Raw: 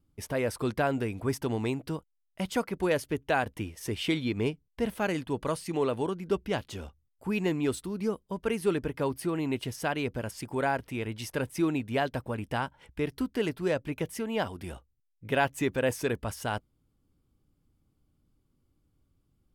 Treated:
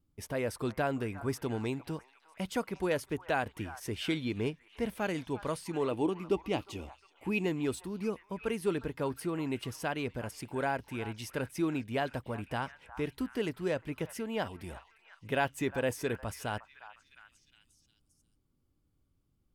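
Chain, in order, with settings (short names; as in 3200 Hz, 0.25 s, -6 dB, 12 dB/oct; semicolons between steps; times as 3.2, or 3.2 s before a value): 5.91–7.46 thirty-one-band EQ 315 Hz +11 dB, 800 Hz +4 dB, 1600 Hz -9 dB, 2500 Hz +7 dB; delay with a stepping band-pass 0.356 s, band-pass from 1100 Hz, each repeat 0.7 oct, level -11.5 dB; gain -4 dB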